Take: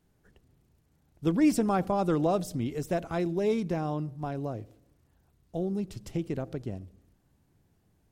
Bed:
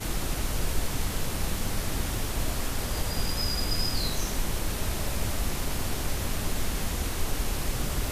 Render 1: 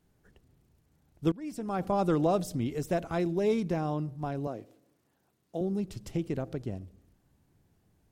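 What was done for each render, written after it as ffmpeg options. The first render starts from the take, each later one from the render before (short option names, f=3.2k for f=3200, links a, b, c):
-filter_complex "[0:a]asettb=1/sr,asplit=3[a][b][c];[a]atrim=end=4.474[d];[b]atrim=start=4.47:end=5.61,asetpts=PTS-STARTPTS,afade=t=in:d=0.004:c=qsin,afade=t=out:st=1.136:d=0.004:c=qsin,highpass=210[e];[c]atrim=start=5.606[f];[d][e]acrossfade=d=0.004:c1=hsin:c2=qsin[g];[g][f]acrossfade=d=0.004:c1=qsin:c2=hsin,asplit=2[h][i];[h]atrim=end=1.32,asetpts=PTS-STARTPTS,afade=t=out:st=1.316:d=0.004:c=hsin:silence=0.105925[j];[i]atrim=start=1.32,asetpts=PTS-STARTPTS,afade=t=in:d=0.62:c=qua:silence=0.105925[k];[j][k]concat=n=2:v=0:a=1"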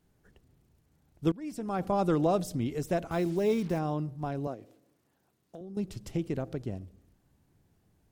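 -filter_complex "[0:a]asettb=1/sr,asplit=3[a][b][c];[a]atrim=end=3.114[d];[b]atrim=start=3.11:end=3.79,asetpts=PTS-STARTPTS,afade=t=in:d=0.004:c=qsin,afade=t=out:st=0.676:d=0.004:c=qsin,acrusher=bits=7:mix=0:aa=0.5[e];[c]atrim=start=3.786[f];[d][e]acrossfade=d=0.004:c1=hsin:c2=qsin[g];[g][f]acrossfade=d=0.004:c1=qsin:c2=hsin,asettb=1/sr,asplit=3[h][i][j];[h]atrim=end=4.544[k];[i]atrim=start=4.54:end=5.77,asetpts=PTS-STARTPTS,afade=t=in:d=0.004:c=qsin,afade=t=out:st=1.226:d=0.004:c=qsin,acompressor=threshold=-41dB:ratio=6:attack=3.2:release=140:knee=1:detection=peak[l];[j]atrim=start=5.766[m];[k][l]acrossfade=d=0.004:c1=hsin:c2=qsin[n];[n][m]acrossfade=d=0.004:c1=qsin:c2=hsin"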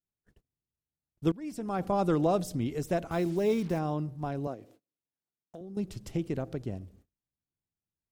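-af "agate=range=-29dB:threshold=-58dB:ratio=16:detection=peak"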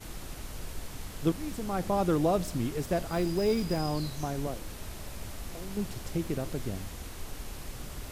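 -filter_complex "[1:a]volume=-11.5dB[a];[0:a][a]amix=inputs=2:normalize=0"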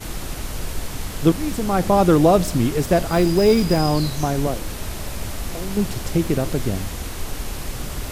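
-af "volume=12dB,alimiter=limit=-3dB:level=0:latency=1"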